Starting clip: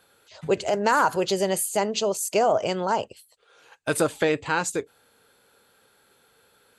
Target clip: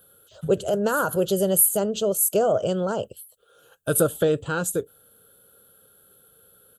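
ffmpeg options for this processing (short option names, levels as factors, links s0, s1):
-af "firequalizer=gain_entry='entry(180,0);entry(260,-7);entry(540,-2);entry(900,-18);entry(1400,-5);entry(2100,-28);entry(3100,-6);entry(4700,-16);entry(12000,10)':delay=0.05:min_phase=1,volume=2"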